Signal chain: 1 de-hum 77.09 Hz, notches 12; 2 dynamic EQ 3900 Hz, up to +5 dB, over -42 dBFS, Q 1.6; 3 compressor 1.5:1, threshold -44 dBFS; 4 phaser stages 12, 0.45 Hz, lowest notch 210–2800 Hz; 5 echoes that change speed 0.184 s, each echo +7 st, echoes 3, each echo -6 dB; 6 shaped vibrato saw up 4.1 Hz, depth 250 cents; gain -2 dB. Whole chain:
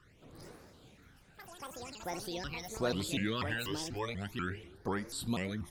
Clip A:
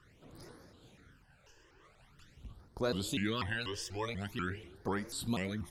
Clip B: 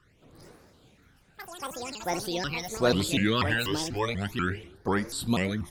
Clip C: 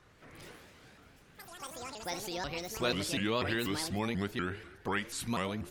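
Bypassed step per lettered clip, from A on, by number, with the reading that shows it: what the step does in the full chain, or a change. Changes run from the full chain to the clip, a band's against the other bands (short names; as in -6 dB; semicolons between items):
5, momentary loudness spread change +1 LU; 3, mean gain reduction 6.0 dB; 4, 125 Hz band -2.5 dB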